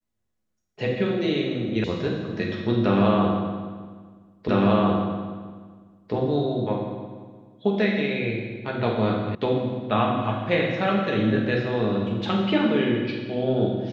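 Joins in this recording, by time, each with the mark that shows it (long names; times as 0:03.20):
0:01.84: cut off before it has died away
0:04.48: the same again, the last 1.65 s
0:09.35: cut off before it has died away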